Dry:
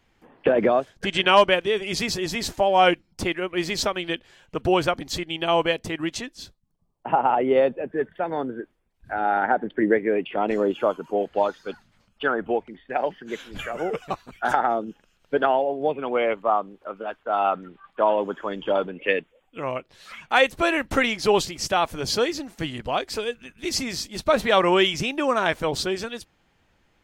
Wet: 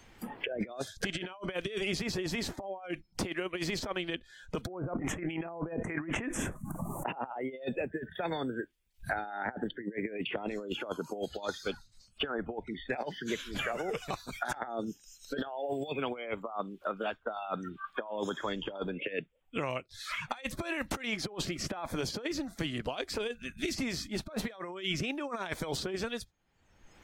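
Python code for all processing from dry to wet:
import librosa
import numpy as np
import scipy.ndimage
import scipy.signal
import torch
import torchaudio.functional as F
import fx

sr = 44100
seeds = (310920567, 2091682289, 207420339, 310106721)

y = fx.chain(x, sr, fx.env_lowpass_down(base_hz=850.0, full_db=-21.0),
    fx.cheby1_bandstop(low_hz=2100.0, high_hz=8500.0, order=2),
    fx.env_flatten(amount_pct=70), at=(4.67, 7.09))
y = fx.over_compress(y, sr, threshold_db=-27.0, ratio=-0.5)
y = fx.noise_reduce_blind(y, sr, reduce_db=19)
y = fx.band_squash(y, sr, depth_pct=100)
y = F.gain(torch.from_numpy(y), -8.5).numpy()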